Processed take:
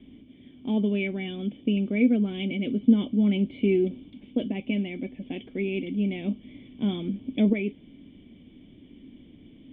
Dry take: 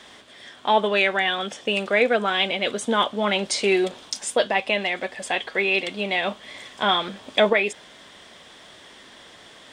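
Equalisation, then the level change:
formant resonators in series i
spectral tilt −2.5 dB per octave
low-shelf EQ 280 Hz +8 dB
+3.5 dB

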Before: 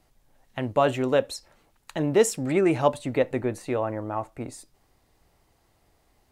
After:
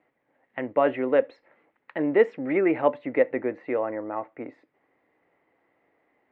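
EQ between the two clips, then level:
loudspeaker in its box 250–2,400 Hz, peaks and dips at 290 Hz +6 dB, 500 Hz +6 dB, 2,000 Hz +9 dB
−2.5 dB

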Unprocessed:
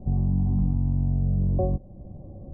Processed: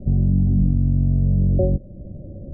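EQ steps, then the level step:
elliptic low-pass filter 630 Hz, stop band 40 dB
+6.5 dB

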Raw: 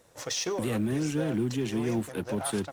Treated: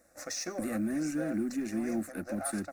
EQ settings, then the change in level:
phaser with its sweep stopped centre 640 Hz, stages 8
−1.0 dB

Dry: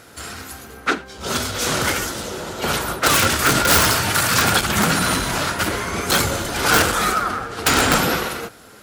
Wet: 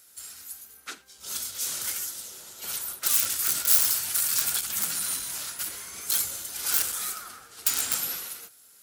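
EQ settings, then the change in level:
first-order pre-emphasis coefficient 0.9
high-shelf EQ 5,600 Hz +6 dB
−8.5 dB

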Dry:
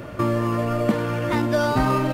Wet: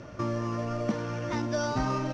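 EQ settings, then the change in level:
low-pass with resonance 5,800 Hz, resonance Q 7.7
parametric band 400 Hz −2 dB 0.77 octaves
high-shelf EQ 2,800 Hz −8 dB
−8.0 dB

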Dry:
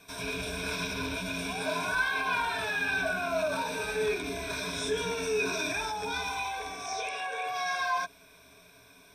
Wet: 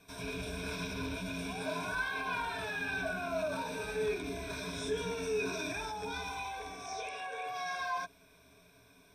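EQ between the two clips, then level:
low-shelf EQ 500 Hz +6.5 dB
−7.5 dB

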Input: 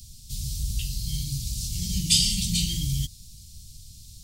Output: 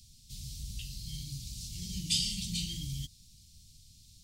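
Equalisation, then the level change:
dynamic equaliser 1,300 Hz, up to −5 dB, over −45 dBFS, Q 0.76
low-shelf EQ 180 Hz −9.5 dB
high-shelf EQ 5,800 Hz −10.5 dB
−4.5 dB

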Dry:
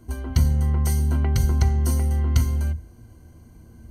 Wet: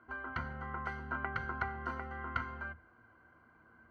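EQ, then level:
resonant band-pass 1,400 Hz, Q 4.4
high-frequency loss of the air 350 metres
+11.0 dB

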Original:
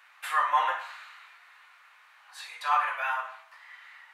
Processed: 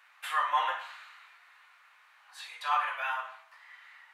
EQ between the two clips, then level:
dynamic equaliser 3,200 Hz, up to +6 dB, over −53 dBFS, Q 3.2
−3.5 dB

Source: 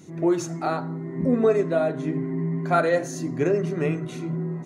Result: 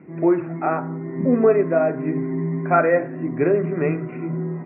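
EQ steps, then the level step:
high-pass filter 150 Hz
Butterworth low-pass 2,500 Hz 96 dB per octave
+4.0 dB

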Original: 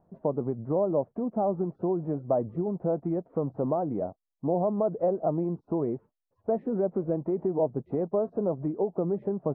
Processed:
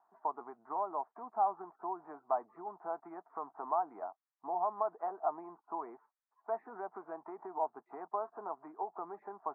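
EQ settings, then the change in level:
four-pole ladder high-pass 630 Hz, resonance 30%
high-frequency loss of the air 280 metres
phaser with its sweep stopped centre 1,300 Hz, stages 4
+12.0 dB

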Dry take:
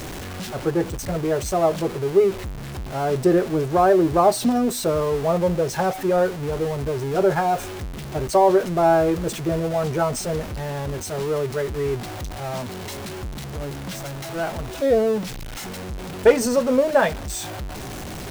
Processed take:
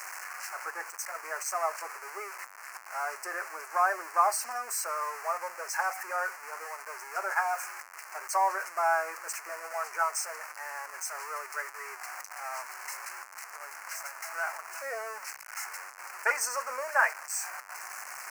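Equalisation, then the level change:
high-pass filter 1,100 Hz 24 dB per octave
Butterworth band-reject 3,500 Hz, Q 1.1
spectral tilt −1.5 dB per octave
+2.5 dB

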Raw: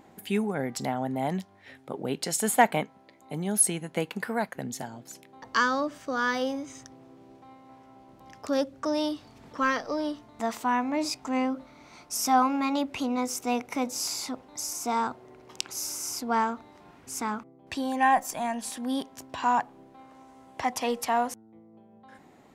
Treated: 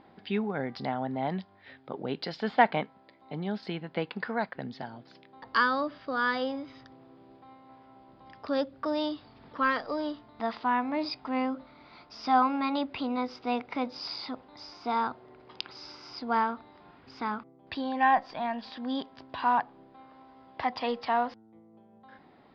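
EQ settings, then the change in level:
Chebyshev low-pass with heavy ripple 5,000 Hz, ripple 3 dB
0.0 dB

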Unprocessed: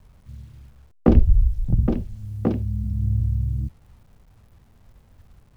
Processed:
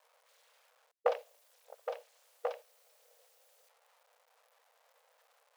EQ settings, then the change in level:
linear-phase brick-wall high-pass 450 Hz
−3.5 dB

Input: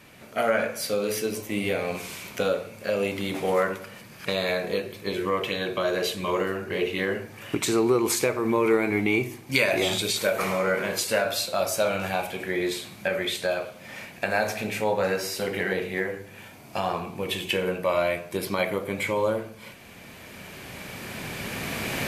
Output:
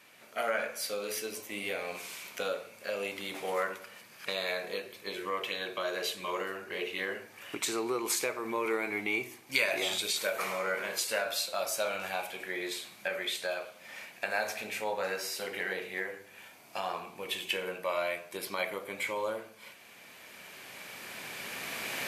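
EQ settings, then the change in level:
high-pass filter 790 Hz 6 dB per octave
−4.5 dB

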